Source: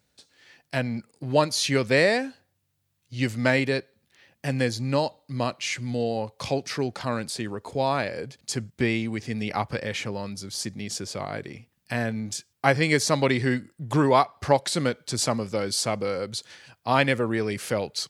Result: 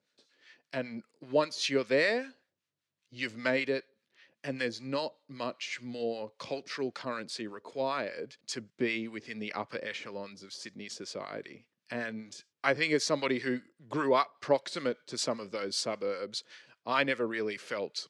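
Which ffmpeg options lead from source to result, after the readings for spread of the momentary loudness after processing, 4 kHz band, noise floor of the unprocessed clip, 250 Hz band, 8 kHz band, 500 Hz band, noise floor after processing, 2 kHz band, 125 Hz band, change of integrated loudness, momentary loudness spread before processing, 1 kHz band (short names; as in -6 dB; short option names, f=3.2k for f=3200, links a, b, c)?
14 LU, -6.5 dB, -74 dBFS, -9.0 dB, -10.5 dB, -6.0 dB, under -85 dBFS, -6.0 dB, -18.0 dB, -7.5 dB, 11 LU, -8.5 dB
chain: -filter_complex "[0:a]equalizer=f=780:t=o:w=0.31:g=-9,acrossover=split=880[a][b];[a]aeval=exprs='val(0)*(1-0.7/2+0.7/2*cos(2*PI*5.1*n/s))':c=same[c];[b]aeval=exprs='val(0)*(1-0.7/2-0.7/2*cos(2*PI*5.1*n/s))':c=same[d];[c][d]amix=inputs=2:normalize=0,highpass=280,lowpass=5.5k,volume=-2dB"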